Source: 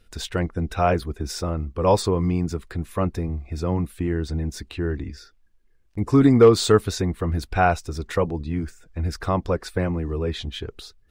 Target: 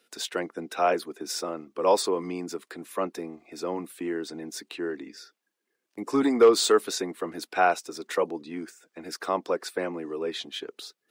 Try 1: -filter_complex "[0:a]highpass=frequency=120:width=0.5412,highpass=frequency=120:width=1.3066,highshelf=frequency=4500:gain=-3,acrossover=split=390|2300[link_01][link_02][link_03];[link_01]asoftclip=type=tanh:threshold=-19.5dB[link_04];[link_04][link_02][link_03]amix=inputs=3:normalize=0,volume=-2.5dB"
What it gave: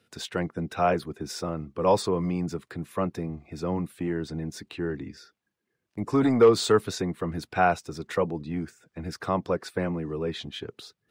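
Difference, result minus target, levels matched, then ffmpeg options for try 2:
125 Hz band +15.5 dB; 8,000 Hz band −5.5 dB
-filter_complex "[0:a]highpass=frequency=270:width=0.5412,highpass=frequency=270:width=1.3066,highshelf=frequency=4500:gain=4.5,acrossover=split=390|2300[link_01][link_02][link_03];[link_01]asoftclip=type=tanh:threshold=-19.5dB[link_04];[link_04][link_02][link_03]amix=inputs=3:normalize=0,volume=-2.5dB"

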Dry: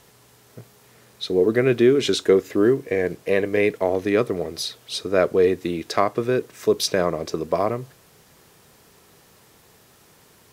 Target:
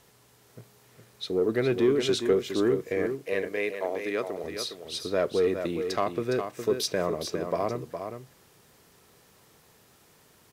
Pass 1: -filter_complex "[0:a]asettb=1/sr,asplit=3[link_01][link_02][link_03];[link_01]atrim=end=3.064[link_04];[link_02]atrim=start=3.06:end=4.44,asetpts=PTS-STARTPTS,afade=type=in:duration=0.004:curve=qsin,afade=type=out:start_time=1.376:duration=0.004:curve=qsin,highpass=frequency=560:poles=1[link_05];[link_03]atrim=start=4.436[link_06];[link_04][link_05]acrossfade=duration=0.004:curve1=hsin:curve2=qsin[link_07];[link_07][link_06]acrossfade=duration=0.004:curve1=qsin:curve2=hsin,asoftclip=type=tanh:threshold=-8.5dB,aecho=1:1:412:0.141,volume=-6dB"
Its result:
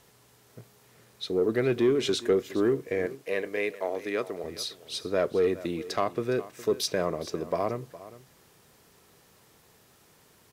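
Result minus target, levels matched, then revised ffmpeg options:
echo-to-direct −9.5 dB
-filter_complex "[0:a]asettb=1/sr,asplit=3[link_01][link_02][link_03];[link_01]atrim=end=3.064[link_04];[link_02]atrim=start=3.06:end=4.44,asetpts=PTS-STARTPTS,afade=type=in:duration=0.004:curve=qsin,afade=type=out:start_time=1.376:duration=0.004:curve=qsin,highpass=frequency=560:poles=1[link_05];[link_03]atrim=start=4.436[link_06];[link_04][link_05]acrossfade=duration=0.004:curve1=hsin:curve2=qsin[link_07];[link_07][link_06]acrossfade=duration=0.004:curve1=qsin:curve2=hsin,asoftclip=type=tanh:threshold=-8.5dB,aecho=1:1:412:0.422,volume=-6dB"

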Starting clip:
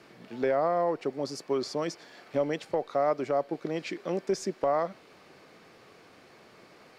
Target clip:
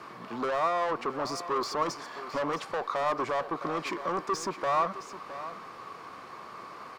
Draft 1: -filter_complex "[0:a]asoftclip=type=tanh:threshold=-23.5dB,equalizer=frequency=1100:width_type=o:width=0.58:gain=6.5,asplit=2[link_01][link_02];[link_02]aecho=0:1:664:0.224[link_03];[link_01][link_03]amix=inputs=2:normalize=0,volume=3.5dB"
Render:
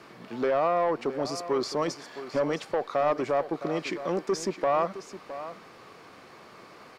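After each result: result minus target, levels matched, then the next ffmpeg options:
soft clipping: distortion −9 dB; 1,000 Hz band −3.5 dB
-filter_complex "[0:a]asoftclip=type=tanh:threshold=-34dB,equalizer=frequency=1100:width_type=o:width=0.58:gain=6.5,asplit=2[link_01][link_02];[link_02]aecho=0:1:664:0.224[link_03];[link_01][link_03]amix=inputs=2:normalize=0,volume=3.5dB"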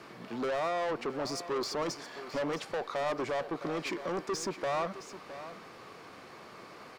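1,000 Hz band −4.0 dB
-filter_complex "[0:a]asoftclip=type=tanh:threshold=-34dB,equalizer=frequency=1100:width_type=o:width=0.58:gain=17.5,asplit=2[link_01][link_02];[link_02]aecho=0:1:664:0.224[link_03];[link_01][link_03]amix=inputs=2:normalize=0,volume=3.5dB"

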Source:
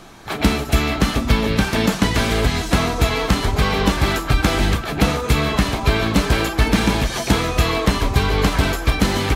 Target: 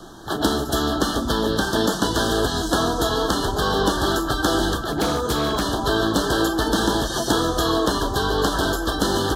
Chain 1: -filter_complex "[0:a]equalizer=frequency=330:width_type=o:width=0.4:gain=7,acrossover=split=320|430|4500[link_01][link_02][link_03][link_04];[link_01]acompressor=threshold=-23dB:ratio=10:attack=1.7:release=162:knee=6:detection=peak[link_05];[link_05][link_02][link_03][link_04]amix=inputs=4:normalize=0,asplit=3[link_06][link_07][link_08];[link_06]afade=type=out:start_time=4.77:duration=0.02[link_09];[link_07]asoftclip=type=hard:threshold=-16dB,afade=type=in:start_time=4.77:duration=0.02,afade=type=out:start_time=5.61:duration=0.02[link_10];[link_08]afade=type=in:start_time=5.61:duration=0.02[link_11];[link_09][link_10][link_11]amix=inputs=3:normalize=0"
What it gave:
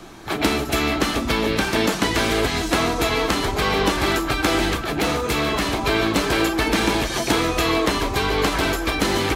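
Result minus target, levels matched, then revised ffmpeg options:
2,000 Hz band +3.5 dB
-filter_complex "[0:a]asuperstop=centerf=2300:order=12:qfactor=1.8,equalizer=frequency=330:width_type=o:width=0.4:gain=7,acrossover=split=320|430|4500[link_01][link_02][link_03][link_04];[link_01]acompressor=threshold=-23dB:ratio=10:attack=1.7:release=162:knee=6:detection=peak[link_05];[link_05][link_02][link_03][link_04]amix=inputs=4:normalize=0,asplit=3[link_06][link_07][link_08];[link_06]afade=type=out:start_time=4.77:duration=0.02[link_09];[link_07]asoftclip=type=hard:threshold=-16dB,afade=type=in:start_time=4.77:duration=0.02,afade=type=out:start_time=5.61:duration=0.02[link_10];[link_08]afade=type=in:start_time=5.61:duration=0.02[link_11];[link_09][link_10][link_11]amix=inputs=3:normalize=0"

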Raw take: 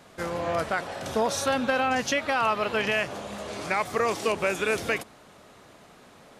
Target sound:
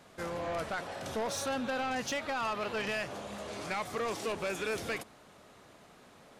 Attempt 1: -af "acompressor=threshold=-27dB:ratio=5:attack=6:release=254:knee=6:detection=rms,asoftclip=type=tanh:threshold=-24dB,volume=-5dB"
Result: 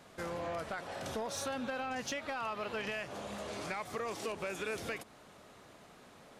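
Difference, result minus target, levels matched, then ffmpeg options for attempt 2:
downward compressor: peak gain reduction +8.5 dB
-af "asoftclip=type=tanh:threshold=-24dB,volume=-5dB"

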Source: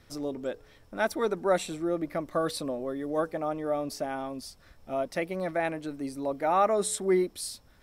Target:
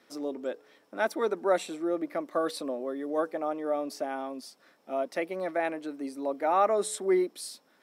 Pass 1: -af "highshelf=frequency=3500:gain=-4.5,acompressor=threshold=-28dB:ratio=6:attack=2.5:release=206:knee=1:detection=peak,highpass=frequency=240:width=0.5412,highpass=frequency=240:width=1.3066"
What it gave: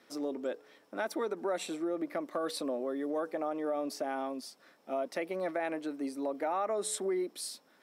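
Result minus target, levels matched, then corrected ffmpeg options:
downward compressor: peak gain reduction +10 dB
-af "highpass=frequency=240:width=0.5412,highpass=frequency=240:width=1.3066,highshelf=frequency=3500:gain=-4.5"

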